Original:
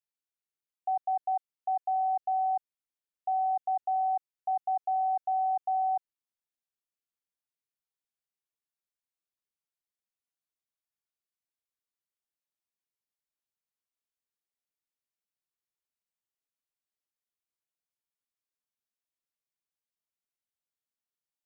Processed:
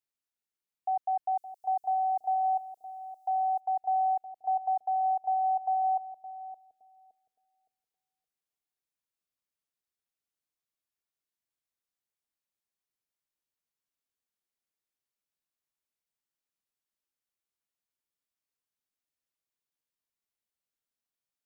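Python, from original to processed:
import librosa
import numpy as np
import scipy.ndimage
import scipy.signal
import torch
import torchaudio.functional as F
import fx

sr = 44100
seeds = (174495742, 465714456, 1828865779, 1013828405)

y = fx.bass_treble(x, sr, bass_db=-4, treble_db=14, at=(1.36, 3.59), fade=0.02)
y = fx.echo_bbd(y, sr, ms=566, stages=2048, feedback_pct=35, wet_db=-6.0)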